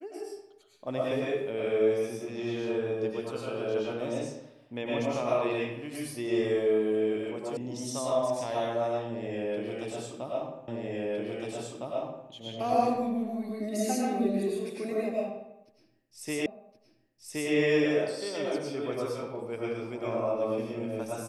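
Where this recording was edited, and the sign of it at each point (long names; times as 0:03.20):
0:07.57: cut off before it has died away
0:10.68: the same again, the last 1.61 s
0:16.46: the same again, the last 1.07 s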